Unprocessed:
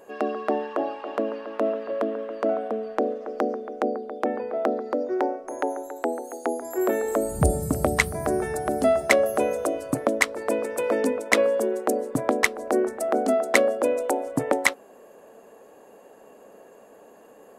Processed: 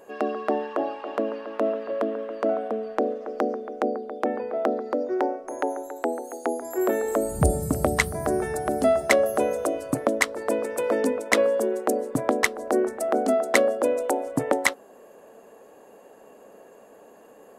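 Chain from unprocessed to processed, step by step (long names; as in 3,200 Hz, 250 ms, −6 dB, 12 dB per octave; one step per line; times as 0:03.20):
dynamic equaliser 2,400 Hz, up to −4 dB, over −45 dBFS, Q 4.5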